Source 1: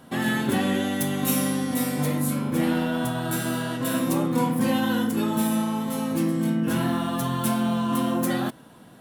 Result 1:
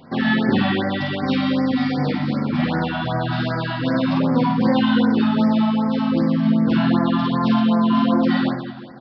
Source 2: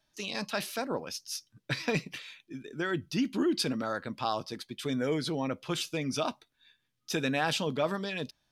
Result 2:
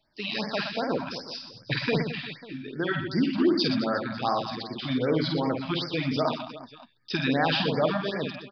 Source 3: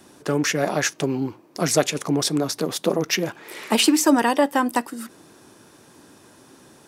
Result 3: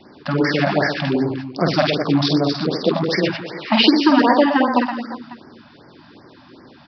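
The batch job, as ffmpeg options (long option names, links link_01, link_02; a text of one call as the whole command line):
ffmpeg -i in.wav -af "aecho=1:1:50|120|218|355.2|547.3:0.631|0.398|0.251|0.158|0.1,aresample=11025,aresample=44100,afftfilt=real='re*(1-between(b*sr/1024,380*pow(3300/380,0.5+0.5*sin(2*PI*2.6*pts/sr))/1.41,380*pow(3300/380,0.5+0.5*sin(2*PI*2.6*pts/sr))*1.41))':imag='im*(1-between(b*sr/1024,380*pow(3300/380,0.5+0.5*sin(2*PI*2.6*pts/sr))/1.41,380*pow(3300/380,0.5+0.5*sin(2*PI*2.6*pts/sr))*1.41))':win_size=1024:overlap=0.75,volume=4dB" out.wav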